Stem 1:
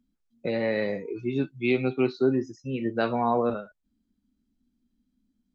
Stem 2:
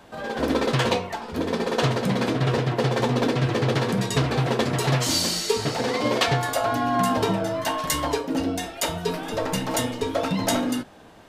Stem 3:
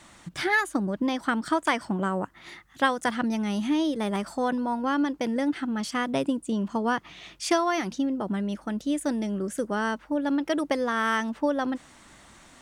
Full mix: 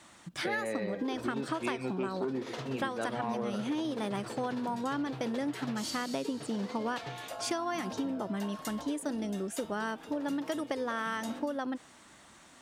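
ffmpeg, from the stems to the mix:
ffmpeg -i stem1.wav -i stem2.wav -i stem3.wav -filter_complex "[0:a]asoftclip=type=tanh:threshold=-17dB,volume=-3dB[link_01];[1:a]adelay=750,volume=-17.5dB[link_02];[2:a]volume=-3.5dB[link_03];[link_01][link_02][link_03]amix=inputs=3:normalize=0,highpass=frequency=140:poles=1,equalizer=frequency=2100:width_type=o:width=0.26:gain=-2,acompressor=threshold=-30dB:ratio=6" out.wav

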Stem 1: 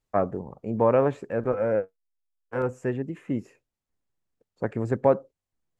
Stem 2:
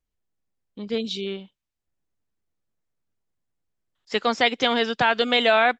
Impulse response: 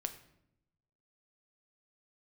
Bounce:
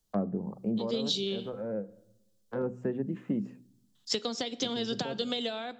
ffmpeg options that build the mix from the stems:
-filter_complex "[0:a]lowpass=1800,equalizer=frequency=200:width=6.1:gain=14,bandreject=frequency=62.3:width_type=h:width=4,bandreject=frequency=124.6:width_type=h:width=4,bandreject=frequency=186.9:width_type=h:width=4,bandreject=frequency=249.2:width_type=h:width=4,bandreject=frequency=311.5:width_type=h:width=4,volume=-2dB,asplit=2[link_01][link_02];[link_02]volume=-14.5dB[link_03];[1:a]acompressor=threshold=-23dB:ratio=6,volume=-5dB,asplit=3[link_04][link_05][link_06];[link_05]volume=-4dB[link_07];[link_06]apad=whole_len=255439[link_08];[link_01][link_08]sidechaincompress=threshold=-49dB:ratio=8:attack=16:release=656[link_09];[2:a]atrim=start_sample=2205[link_10];[link_03][link_07]amix=inputs=2:normalize=0[link_11];[link_11][link_10]afir=irnorm=-1:irlink=0[link_12];[link_09][link_04][link_12]amix=inputs=3:normalize=0,highshelf=frequency=6500:gain=-7.5,acrossover=split=130|470[link_13][link_14][link_15];[link_13]acompressor=threshold=-56dB:ratio=4[link_16];[link_14]acompressor=threshold=-28dB:ratio=4[link_17];[link_15]acompressor=threshold=-42dB:ratio=4[link_18];[link_16][link_17][link_18]amix=inputs=3:normalize=0,aexciter=amount=4.3:drive=8.4:freq=3300"

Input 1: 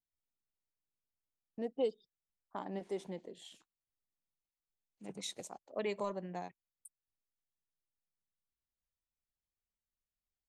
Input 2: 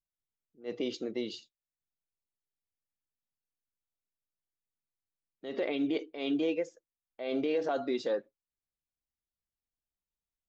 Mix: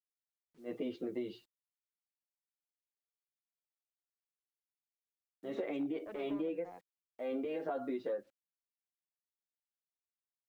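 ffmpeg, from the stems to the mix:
ffmpeg -i stem1.wav -i stem2.wav -filter_complex "[0:a]highpass=240,asoftclip=type=hard:threshold=-37dB,adelay=300,volume=-5dB[link_01];[1:a]highshelf=frequency=4500:gain=-2.5,asplit=2[link_02][link_03];[link_03]adelay=9.8,afreqshift=0.3[link_04];[link_02][link_04]amix=inputs=2:normalize=1,volume=2dB,asplit=2[link_05][link_06];[link_06]apad=whole_len=475689[link_07];[link_01][link_07]sidechaingate=range=-33dB:threshold=-51dB:ratio=16:detection=peak[link_08];[link_08][link_05]amix=inputs=2:normalize=0,lowpass=2000,acrusher=bits=11:mix=0:aa=0.000001,acompressor=threshold=-34dB:ratio=6" out.wav

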